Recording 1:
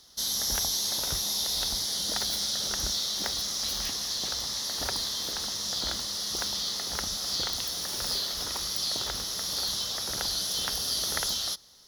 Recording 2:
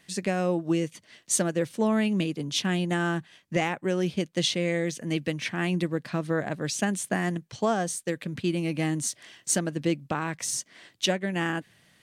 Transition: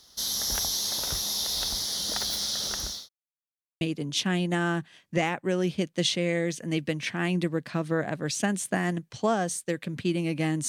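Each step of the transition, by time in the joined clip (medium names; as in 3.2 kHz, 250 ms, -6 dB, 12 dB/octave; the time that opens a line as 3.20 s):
recording 1
2.60–3.09 s: fade out equal-power
3.09–3.81 s: mute
3.81 s: go over to recording 2 from 2.20 s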